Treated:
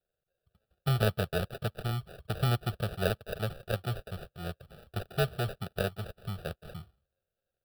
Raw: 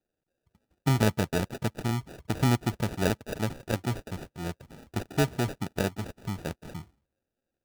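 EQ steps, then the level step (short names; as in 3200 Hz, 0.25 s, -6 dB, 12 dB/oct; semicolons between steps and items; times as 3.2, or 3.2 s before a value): fixed phaser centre 1400 Hz, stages 8; 0.0 dB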